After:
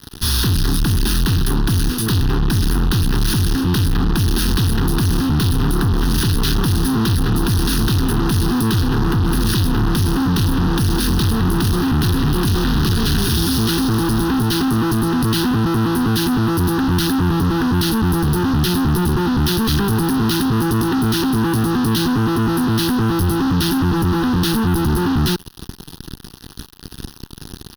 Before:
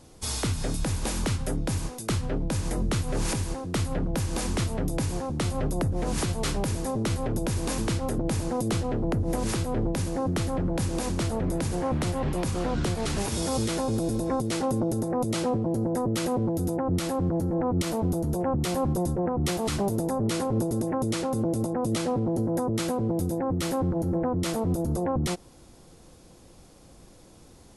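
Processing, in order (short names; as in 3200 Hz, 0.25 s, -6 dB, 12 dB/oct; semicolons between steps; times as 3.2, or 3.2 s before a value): elliptic band-stop 420–1500 Hz; fuzz box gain 48 dB, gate -48 dBFS; fixed phaser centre 2200 Hz, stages 6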